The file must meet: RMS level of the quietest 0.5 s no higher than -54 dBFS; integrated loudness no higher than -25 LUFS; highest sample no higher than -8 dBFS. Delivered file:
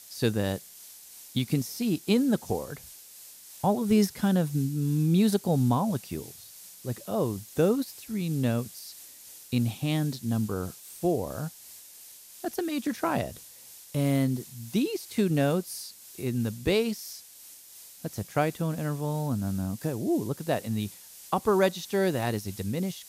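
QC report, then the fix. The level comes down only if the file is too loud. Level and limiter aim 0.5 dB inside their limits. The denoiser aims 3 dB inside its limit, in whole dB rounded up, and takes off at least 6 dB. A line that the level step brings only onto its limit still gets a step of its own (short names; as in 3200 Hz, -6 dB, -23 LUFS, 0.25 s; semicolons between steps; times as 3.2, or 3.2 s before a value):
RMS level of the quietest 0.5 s -50 dBFS: fail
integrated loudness -28.5 LUFS: OK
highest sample -11.0 dBFS: OK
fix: denoiser 7 dB, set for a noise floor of -50 dBFS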